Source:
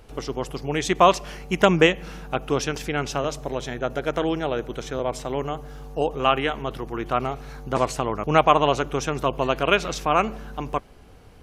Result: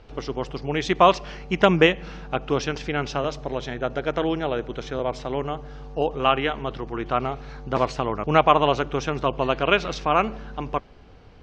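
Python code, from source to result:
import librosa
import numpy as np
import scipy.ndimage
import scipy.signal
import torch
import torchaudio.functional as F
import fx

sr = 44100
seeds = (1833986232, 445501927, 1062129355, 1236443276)

y = scipy.signal.sosfilt(scipy.signal.butter(4, 5300.0, 'lowpass', fs=sr, output='sos'), x)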